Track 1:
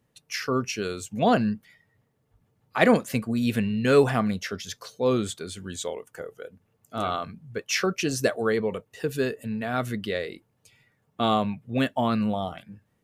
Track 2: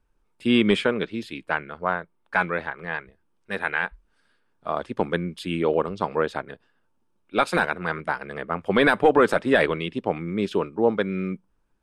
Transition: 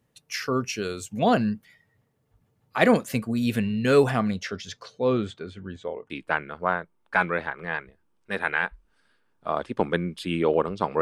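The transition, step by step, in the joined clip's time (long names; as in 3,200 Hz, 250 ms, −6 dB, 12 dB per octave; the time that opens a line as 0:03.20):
track 1
0:04.11–0:06.10: low-pass filter 10,000 Hz → 1,200 Hz
0:06.10: continue with track 2 from 0:01.30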